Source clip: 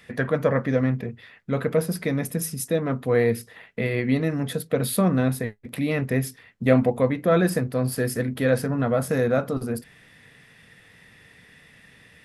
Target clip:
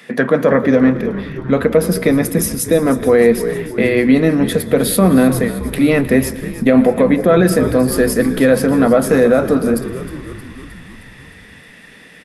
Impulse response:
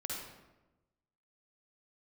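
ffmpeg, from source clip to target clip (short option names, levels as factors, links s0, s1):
-filter_complex "[0:a]highpass=f=190:w=0.5412,highpass=f=190:w=1.3066,lowshelf=f=410:g=5,asplit=8[s0][s1][s2][s3][s4][s5][s6][s7];[s1]adelay=311,afreqshift=-63,volume=0.188[s8];[s2]adelay=622,afreqshift=-126,volume=0.119[s9];[s3]adelay=933,afreqshift=-189,volume=0.075[s10];[s4]adelay=1244,afreqshift=-252,volume=0.0473[s11];[s5]adelay=1555,afreqshift=-315,volume=0.0295[s12];[s6]adelay=1866,afreqshift=-378,volume=0.0186[s13];[s7]adelay=2177,afreqshift=-441,volume=0.0117[s14];[s0][s8][s9][s10][s11][s12][s13][s14]amix=inputs=8:normalize=0,asplit=2[s15][s16];[1:a]atrim=start_sample=2205,adelay=114[s17];[s16][s17]afir=irnorm=-1:irlink=0,volume=0.133[s18];[s15][s18]amix=inputs=2:normalize=0,alimiter=level_in=3.55:limit=0.891:release=50:level=0:latency=1,volume=0.891"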